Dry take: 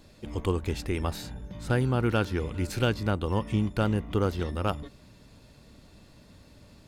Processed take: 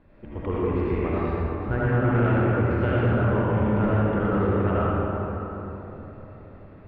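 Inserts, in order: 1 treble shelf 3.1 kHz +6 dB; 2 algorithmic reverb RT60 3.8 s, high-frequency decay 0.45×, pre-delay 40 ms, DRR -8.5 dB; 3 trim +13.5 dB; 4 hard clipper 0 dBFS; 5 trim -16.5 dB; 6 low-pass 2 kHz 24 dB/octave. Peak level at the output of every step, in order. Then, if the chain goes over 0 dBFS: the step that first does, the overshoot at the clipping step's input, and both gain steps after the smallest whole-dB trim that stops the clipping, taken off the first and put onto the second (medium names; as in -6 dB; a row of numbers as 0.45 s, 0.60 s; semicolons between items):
-12.5 dBFS, -4.5 dBFS, +9.0 dBFS, 0.0 dBFS, -16.5 dBFS, -15.0 dBFS; step 3, 9.0 dB; step 3 +4.5 dB, step 5 -7.5 dB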